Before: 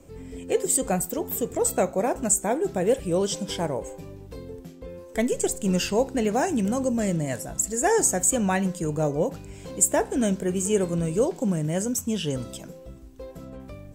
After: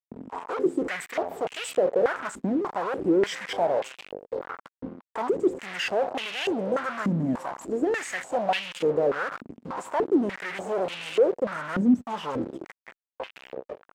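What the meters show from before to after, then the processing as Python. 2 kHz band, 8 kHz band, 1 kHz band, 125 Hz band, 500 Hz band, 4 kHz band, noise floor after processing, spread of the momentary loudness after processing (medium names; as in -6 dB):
+3.0 dB, -20.0 dB, +0.5 dB, -8.0 dB, -0.5 dB, +0.5 dB, under -85 dBFS, 16 LU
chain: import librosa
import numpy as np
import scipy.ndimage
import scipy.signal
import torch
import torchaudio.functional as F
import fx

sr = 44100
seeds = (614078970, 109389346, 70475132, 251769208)

y = fx.fuzz(x, sr, gain_db=41.0, gate_db=-35.0)
y = fx.filter_held_bandpass(y, sr, hz=3.4, low_hz=240.0, high_hz=2800.0)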